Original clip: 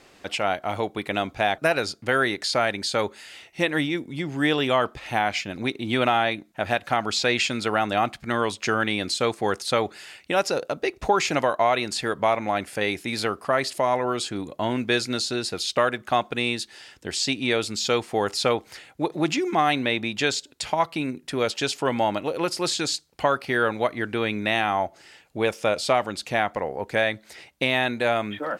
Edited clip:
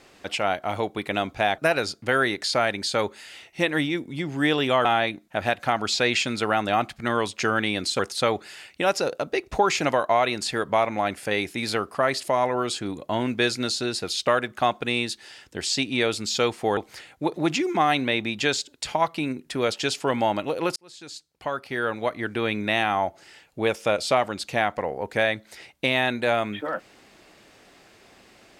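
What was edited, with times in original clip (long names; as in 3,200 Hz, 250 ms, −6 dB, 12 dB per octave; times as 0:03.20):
0:04.85–0:06.09: remove
0:09.23–0:09.49: remove
0:18.27–0:18.55: remove
0:22.54–0:24.27: fade in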